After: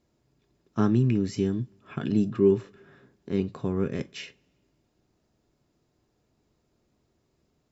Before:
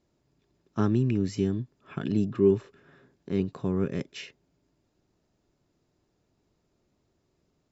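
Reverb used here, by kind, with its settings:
coupled-rooms reverb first 0.2 s, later 1.7 s, from −28 dB, DRR 10.5 dB
level +1 dB

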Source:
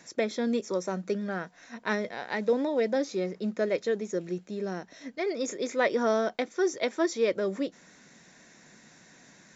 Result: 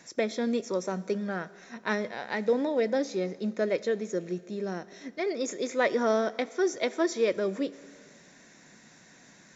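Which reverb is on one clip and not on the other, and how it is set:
four-comb reverb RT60 2 s, combs from 25 ms, DRR 17.5 dB

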